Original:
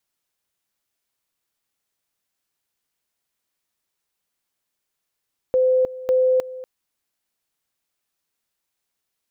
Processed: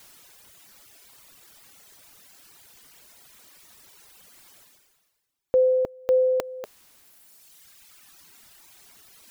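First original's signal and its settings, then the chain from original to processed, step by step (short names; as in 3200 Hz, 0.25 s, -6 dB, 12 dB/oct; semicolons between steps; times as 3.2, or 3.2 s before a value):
two-level tone 513 Hz -14 dBFS, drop 17 dB, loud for 0.31 s, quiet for 0.24 s, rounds 2
reverb removal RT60 1.8 s; reverse; upward compressor, threshold -28 dBFS; reverse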